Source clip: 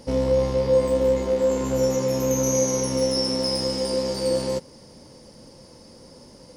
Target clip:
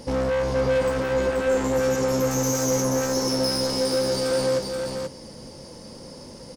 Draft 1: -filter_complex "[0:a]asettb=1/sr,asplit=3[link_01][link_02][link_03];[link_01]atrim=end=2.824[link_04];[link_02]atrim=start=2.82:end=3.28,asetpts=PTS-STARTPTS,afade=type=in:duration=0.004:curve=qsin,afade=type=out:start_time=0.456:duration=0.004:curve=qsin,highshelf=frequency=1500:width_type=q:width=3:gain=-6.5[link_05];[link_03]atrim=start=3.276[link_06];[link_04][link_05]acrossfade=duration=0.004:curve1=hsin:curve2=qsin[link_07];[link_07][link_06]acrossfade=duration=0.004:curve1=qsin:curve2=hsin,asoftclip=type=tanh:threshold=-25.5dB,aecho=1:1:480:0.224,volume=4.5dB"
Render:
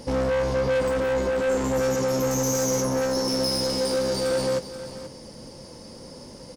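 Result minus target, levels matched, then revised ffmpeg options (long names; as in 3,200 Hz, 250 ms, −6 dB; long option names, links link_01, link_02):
echo-to-direct −8.5 dB
-filter_complex "[0:a]asettb=1/sr,asplit=3[link_01][link_02][link_03];[link_01]atrim=end=2.824[link_04];[link_02]atrim=start=2.82:end=3.28,asetpts=PTS-STARTPTS,afade=type=in:duration=0.004:curve=qsin,afade=type=out:start_time=0.456:duration=0.004:curve=qsin,highshelf=frequency=1500:width_type=q:width=3:gain=-6.5[link_05];[link_03]atrim=start=3.276[link_06];[link_04][link_05]acrossfade=duration=0.004:curve1=hsin:curve2=qsin[link_07];[link_07][link_06]acrossfade=duration=0.004:curve1=qsin:curve2=hsin,asoftclip=type=tanh:threshold=-25.5dB,aecho=1:1:480:0.596,volume=4.5dB"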